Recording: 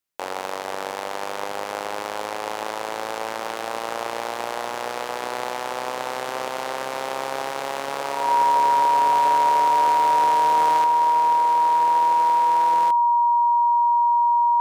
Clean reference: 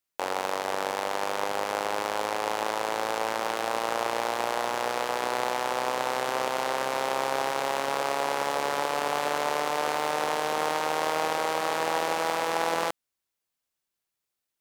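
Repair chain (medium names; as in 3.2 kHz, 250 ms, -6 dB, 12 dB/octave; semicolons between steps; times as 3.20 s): band-stop 950 Hz, Q 30; trim 0 dB, from 10.84 s +5.5 dB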